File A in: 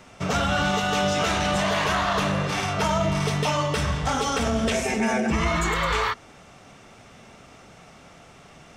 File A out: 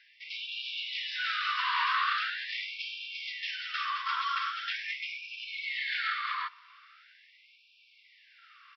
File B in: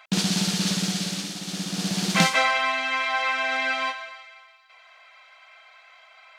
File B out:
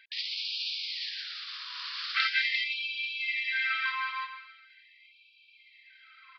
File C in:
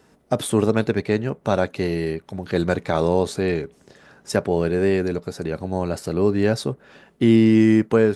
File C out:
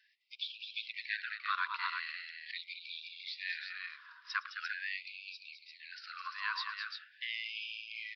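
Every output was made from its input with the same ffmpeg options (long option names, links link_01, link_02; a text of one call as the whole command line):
ffmpeg -i in.wav -af "highpass=frequency=710:width_type=q:width=4.9,aresample=11025,aresample=44100,aecho=1:1:112|211|346:0.112|0.398|0.531,afftfilt=real='re*gte(b*sr/1024,940*pow(2300/940,0.5+0.5*sin(2*PI*0.42*pts/sr)))':imag='im*gte(b*sr/1024,940*pow(2300/940,0.5+0.5*sin(2*PI*0.42*pts/sr)))':win_size=1024:overlap=0.75,volume=-6dB" out.wav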